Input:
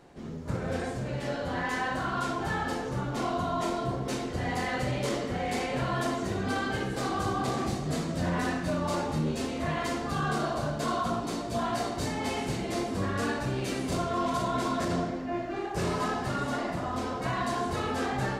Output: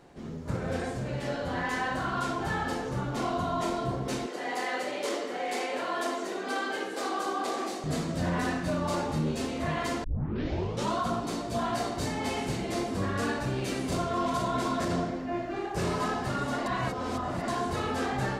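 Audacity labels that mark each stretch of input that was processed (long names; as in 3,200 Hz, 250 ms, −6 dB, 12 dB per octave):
4.260000	7.840000	high-pass filter 300 Hz 24 dB per octave
10.040000	10.040000	tape start 0.93 s
16.660000	17.480000	reverse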